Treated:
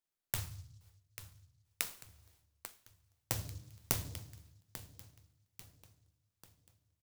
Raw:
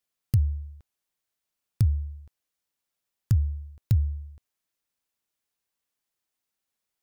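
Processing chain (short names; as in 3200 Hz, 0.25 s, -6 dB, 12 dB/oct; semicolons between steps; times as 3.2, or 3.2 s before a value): 0.44–2.09 inverse Chebyshev high-pass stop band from 1100 Hz, stop band 40 dB; gate with hold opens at -58 dBFS; differentiator; in parallel at -11.5 dB: decimation with a swept rate 9×, swing 60% 0.59 Hz; on the sum: flange 1.2 Hz, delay 9.8 ms, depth 1.3 ms, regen +61%; on a send: feedback echo 0.842 s, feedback 45%, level -13.5 dB; on the sum: shoebox room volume 170 m³, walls mixed, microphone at 0.67 m; noise-modulated delay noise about 5400 Hz, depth 0.19 ms; gain +16 dB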